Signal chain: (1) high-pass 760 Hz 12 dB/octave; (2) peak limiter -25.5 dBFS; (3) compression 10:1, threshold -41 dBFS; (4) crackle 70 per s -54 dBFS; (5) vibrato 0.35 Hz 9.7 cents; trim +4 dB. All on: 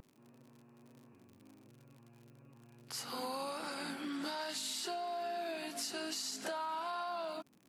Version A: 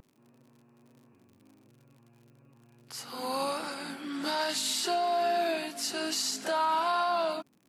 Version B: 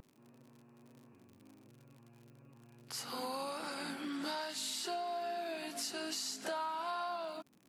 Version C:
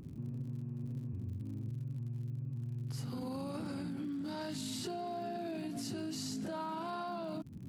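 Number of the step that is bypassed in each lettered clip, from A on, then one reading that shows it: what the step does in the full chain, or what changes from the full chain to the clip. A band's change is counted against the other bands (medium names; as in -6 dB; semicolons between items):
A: 3, mean gain reduction 5.0 dB; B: 2, mean gain reduction 2.5 dB; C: 1, 125 Hz band +26.5 dB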